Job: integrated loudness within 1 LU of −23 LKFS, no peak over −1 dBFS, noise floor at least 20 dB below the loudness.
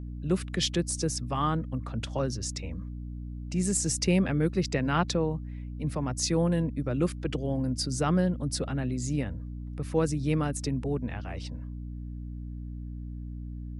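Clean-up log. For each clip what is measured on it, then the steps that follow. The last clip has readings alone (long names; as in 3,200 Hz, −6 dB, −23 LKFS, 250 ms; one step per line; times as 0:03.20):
mains hum 60 Hz; hum harmonics up to 300 Hz; level of the hum −35 dBFS; integrated loudness −30.5 LKFS; sample peak −12.5 dBFS; target loudness −23.0 LKFS
→ hum removal 60 Hz, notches 5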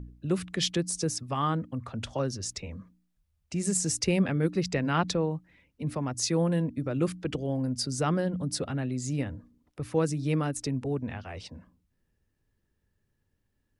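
mains hum none found; integrated loudness −30.0 LKFS; sample peak −13.5 dBFS; target loudness −23.0 LKFS
→ level +7 dB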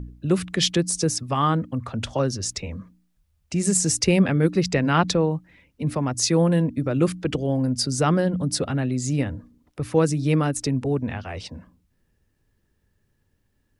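integrated loudness −23.0 LKFS; sample peak −6.5 dBFS; background noise floor −69 dBFS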